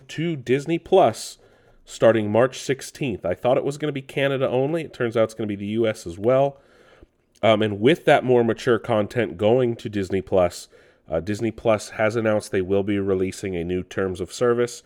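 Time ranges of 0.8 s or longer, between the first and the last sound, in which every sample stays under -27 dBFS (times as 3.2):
6.5–7.43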